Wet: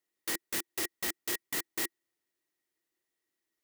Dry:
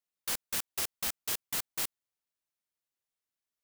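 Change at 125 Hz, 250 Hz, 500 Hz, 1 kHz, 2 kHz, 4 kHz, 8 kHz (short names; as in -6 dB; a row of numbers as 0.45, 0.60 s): -2.0, +8.0, +5.0, -1.0, +4.0, -1.0, -1.0 dB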